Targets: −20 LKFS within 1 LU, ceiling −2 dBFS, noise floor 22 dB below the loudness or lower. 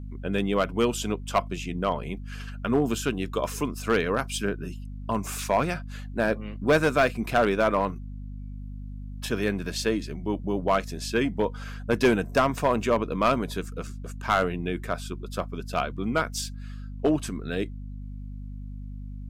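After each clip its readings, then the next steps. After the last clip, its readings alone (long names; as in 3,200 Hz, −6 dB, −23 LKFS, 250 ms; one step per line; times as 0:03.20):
share of clipped samples 0.5%; peaks flattened at −14.0 dBFS; mains hum 50 Hz; hum harmonics up to 250 Hz; level of the hum −34 dBFS; integrated loudness −27.0 LKFS; sample peak −14.0 dBFS; target loudness −20.0 LKFS
→ clipped peaks rebuilt −14 dBFS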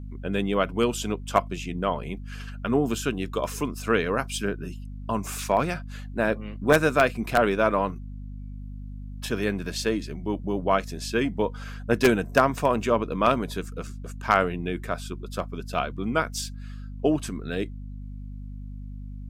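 share of clipped samples 0.0%; mains hum 50 Hz; hum harmonics up to 250 Hz; level of the hum −34 dBFS
→ hum removal 50 Hz, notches 5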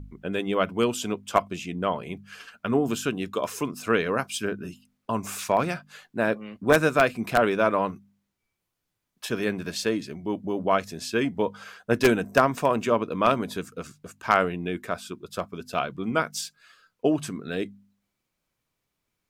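mains hum none found; integrated loudness −26.5 LKFS; sample peak −4.5 dBFS; target loudness −20.0 LKFS
→ level +6.5 dB
brickwall limiter −2 dBFS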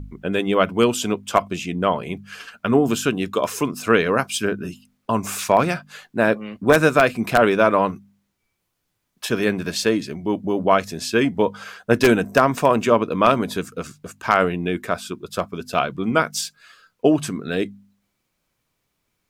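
integrated loudness −20.5 LKFS; sample peak −2.0 dBFS; background noise floor −75 dBFS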